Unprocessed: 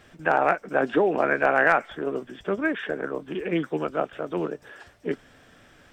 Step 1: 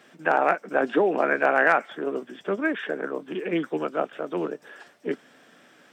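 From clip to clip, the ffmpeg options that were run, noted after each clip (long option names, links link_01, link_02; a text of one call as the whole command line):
ffmpeg -i in.wav -af "highpass=frequency=180:width=0.5412,highpass=frequency=180:width=1.3066" out.wav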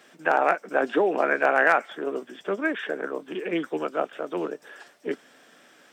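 ffmpeg -i in.wav -af "bass=frequency=250:gain=-6,treble=frequency=4000:gain=4" out.wav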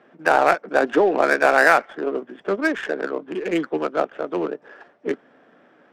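ffmpeg -i in.wav -af "adynamicsmooth=sensitivity=3.5:basefreq=1300,volume=5dB" out.wav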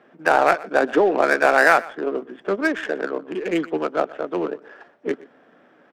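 ffmpeg -i in.wav -af "aecho=1:1:122:0.0944" out.wav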